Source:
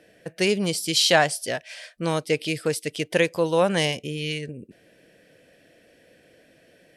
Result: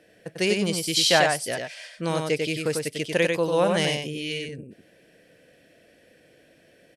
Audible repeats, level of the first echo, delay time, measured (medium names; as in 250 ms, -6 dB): 1, -4.0 dB, 96 ms